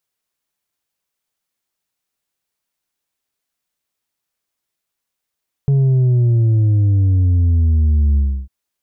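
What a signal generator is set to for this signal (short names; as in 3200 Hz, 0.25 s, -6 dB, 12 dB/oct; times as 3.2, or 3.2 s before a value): sub drop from 140 Hz, over 2.80 s, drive 4 dB, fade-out 0.31 s, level -11 dB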